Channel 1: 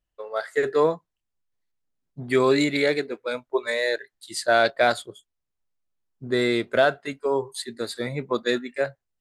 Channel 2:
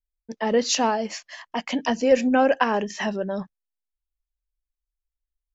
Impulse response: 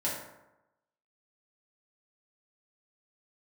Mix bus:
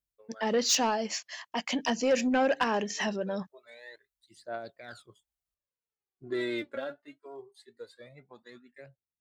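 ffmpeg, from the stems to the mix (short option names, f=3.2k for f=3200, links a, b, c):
-filter_complex "[0:a]lowpass=f=3.1k:p=1,alimiter=limit=-15.5dB:level=0:latency=1:release=22,aphaser=in_gain=1:out_gain=1:delay=3.7:decay=0.74:speed=0.22:type=triangular,volume=-9.5dB,afade=t=in:st=4.83:d=0.47:silence=0.237137,afade=t=out:st=6.54:d=0.51:silence=0.237137[a];[1:a]highshelf=f=2.8k:g=8,volume=-5dB,asplit=2[b][c];[c]apad=whole_len=406102[d];[a][d]sidechaincompress=threshold=-32dB:ratio=8:attack=16:release=1170[e];[e][b]amix=inputs=2:normalize=0,highpass=60,asoftclip=type=tanh:threshold=-18.5dB"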